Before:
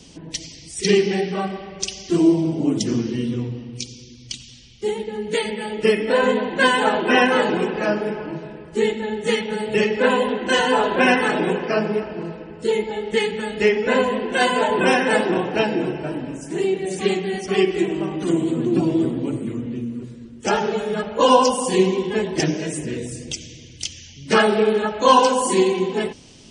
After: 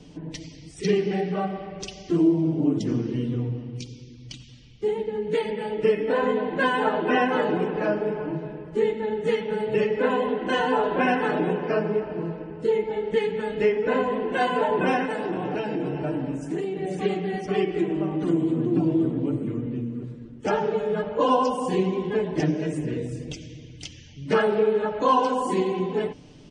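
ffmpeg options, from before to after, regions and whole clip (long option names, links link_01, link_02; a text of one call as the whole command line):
ffmpeg -i in.wav -filter_complex "[0:a]asettb=1/sr,asplit=3[link_01][link_02][link_03];[link_01]atrim=end=15.054[link_04];[link_02]atrim=start=15.05:end=16.77,asetpts=PTS-STARTPTS,afade=type=in:duration=0.004:curve=qsin,afade=type=out:start_time=1.716:duration=0.004:curve=qsin,highshelf=frequency=5300:gain=7.5,asplit=2[link_05][link_06];[link_06]adelay=15,volume=-12dB[link_07];[link_05][link_07]amix=inputs=2:normalize=0,atrim=end_sample=75852,acompressor=threshold=-22dB:ratio=5:attack=3.2:release=140:knee=1:detection=peak[link_08];[link_03]atrim=start=16.766[link_09];[link_04][link_08]acrossfade=duration=0.004:curve1=hsin:curve2=qsin[link_10];[link_10][link_09]acrossfade=duration=0.004:curve1=qsin:curve2=hsin,lowpass=frequency=1200:poles=1,aecho=1:1:6.7:0.4,acompressor=threshold=-25dB:ratio=1.5" out.wav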